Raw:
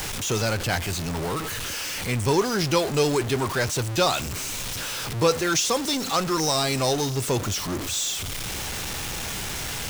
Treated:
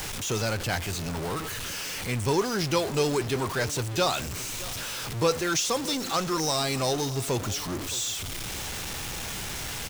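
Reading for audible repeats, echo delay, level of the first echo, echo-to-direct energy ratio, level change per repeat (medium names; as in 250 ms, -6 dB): 1, 617 ms, -18.0 dB, -18.0 dB, no regular repeats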